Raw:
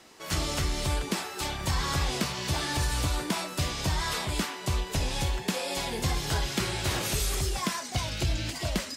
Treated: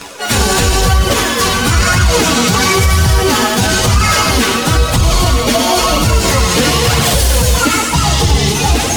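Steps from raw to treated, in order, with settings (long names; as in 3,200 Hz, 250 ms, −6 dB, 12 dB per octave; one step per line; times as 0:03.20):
phase-vocoder pitch shift without resampling +4.5 semitones
noise that follows the level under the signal 31 dB
on a send at −5 dB: parametric band 63 Hz −12 dB 1.1 octaves + convolution reverb RT60 1.1 s, pre-delay 80 ms
on the sum: flanger 1 Hz, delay 0.6 ms, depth 4.4 ms, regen +41%
reversed playback
upward compression, threshold −40 dBFS
reversed playback
high-shelf EQ 9,300 Hz −4.5 dB
boost into a limiter +28.5 dB
level −1 dB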